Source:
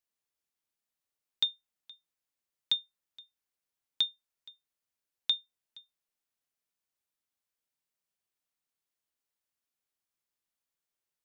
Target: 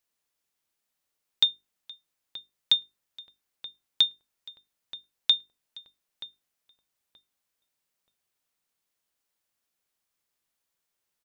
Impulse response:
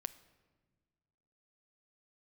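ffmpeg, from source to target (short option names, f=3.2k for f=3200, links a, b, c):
-filter_complex "[0:a]bandreject=f=50:t=h:w=6,bandreject=f=100:t=h:w=6,bandreject=f=150:t=h:w=6,bandreject=f=200:t=h:w=6,bandreject=f=250:t=h:w=6,bandreject=f=300:t=h:w=6,bandreject=f=350:t=h:w=6,bandreject=f=400:t=h:w=6,asplit=2[a][b];[b]adelay=928,lowpass=f=1.3k:p=1,volume=-10.5dB,asplit=2[c][d];[d]adelay=928,lowpass=f=1.3k:p=1,volume=0.29,asplit=2[e][f];[f]adelay=928,lowpass=f=1.3k:p=1,volume=0.29[g];[c][e][g]amix=inputs=3:normalize=0[h];[a][h]amix=inputs=2:normalize=0,volume=7dB"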